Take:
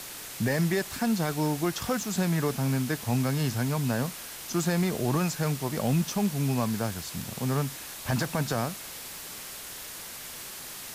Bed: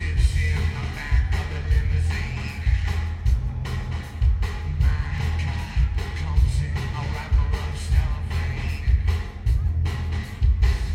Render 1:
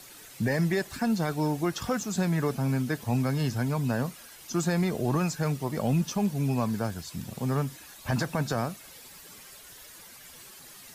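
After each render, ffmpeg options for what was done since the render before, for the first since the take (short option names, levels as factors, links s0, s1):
-af "afftdn=nr=11:nf=-41"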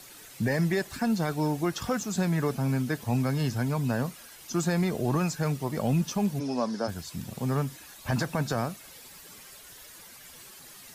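-filter_complex "[0:a]asplit=3[s0][s1][s2];[s0]afade=t=out:st=6.39:d=0.02[s3];[s1]highpass=f=210:w=0.5412,highpass=f=210:w=1.3066,equalizer=f=560:t=q:w=4:g=5,equalizer=f=2400:t=q:w=4:g=-8,equalizer=f=5300:t=q:w=4:g=10,equalizer=f=7700:t=q:w=4:g=-8,lowpass=f=8700:w=0.5412,lowpass=f=8700:w=1.3066,afade=t=in:st=6.39:d=0.02,afade=t=out:st=6.87:d=0.02[s4];[s2]afade=t=in:st=6.87:d=0.02[s5];[s3][s4][s5]amix=inputs=3:normalize=0"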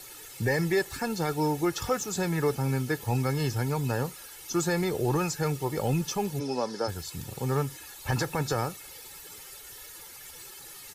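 -af "highshelf=f=8600:g=3.5,aecho=1:1:2.3:0.61"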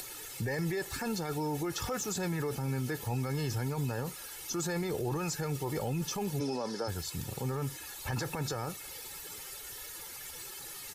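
-af "alimiter=level_in=1.26:limit=0.0631:level=0:latency=1:release=18,volume=0.794,acompressor=mode=upward:threshold=0.01:ratio=2.5"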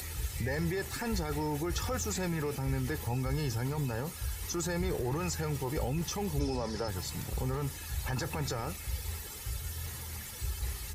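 -filter_complex "[1:a]volume=0.133[s0];[0:a][s0]amix=inputs=2:normalize=0"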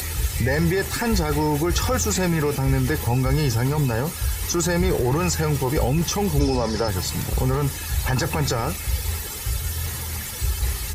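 -af "volume=3.98"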